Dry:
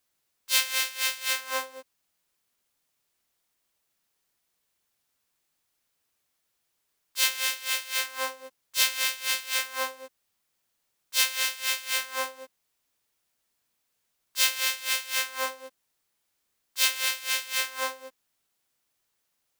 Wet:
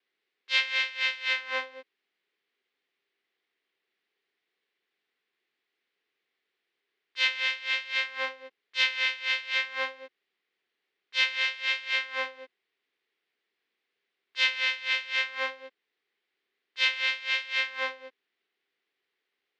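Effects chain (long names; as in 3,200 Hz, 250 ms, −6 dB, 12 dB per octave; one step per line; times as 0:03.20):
loudspeaker in its box 330–3,700 Hz, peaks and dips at 400 Hz +9 dB, 610 Hz −9 dB, 930 Hz −8 dB, 1,300 Hz −4 dB, 2,000 Hz +5 dB
pitch vibrato 0.53 Hz 11 cents
level +1.5 dB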